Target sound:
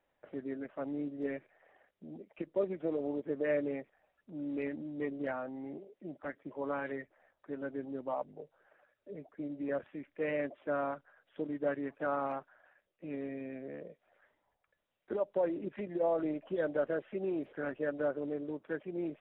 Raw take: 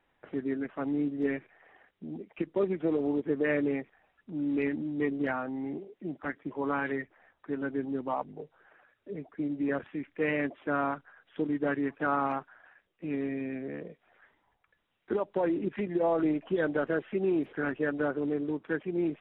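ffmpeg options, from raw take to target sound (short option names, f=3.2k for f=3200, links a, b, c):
-af "equalizer=f=580:t=o:w=0.47:g=10,volume=-8.5dB"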